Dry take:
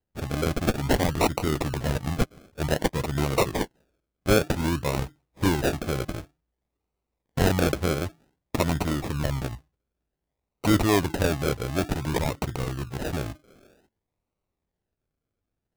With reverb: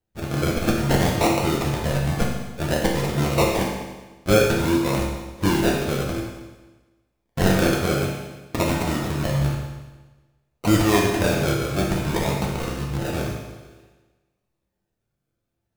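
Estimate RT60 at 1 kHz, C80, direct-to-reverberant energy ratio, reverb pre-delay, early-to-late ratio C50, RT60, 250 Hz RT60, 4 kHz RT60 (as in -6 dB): 1.2 s, 4.0 dB, -2.5 dB, 6 ms, 2.0 dB, 1.2 s, 1.2 s, 1.2 s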